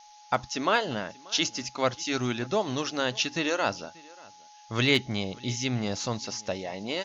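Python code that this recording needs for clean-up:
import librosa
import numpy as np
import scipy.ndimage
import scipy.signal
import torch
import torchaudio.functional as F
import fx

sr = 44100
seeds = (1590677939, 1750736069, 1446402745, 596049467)

y = fx.fix_declip(x, sr, threshold_db=-11.0)
y = fx.notch(y, sr, hz=840.0, q=30.0)
y = fx.noise_reduce(y, sr, print_start_s=4.2, print_end_s=4.7, reduce_db=22.0)
y = fx.fix_echo_inverse(y, sr, delay_ms=585, level_db=-24.0)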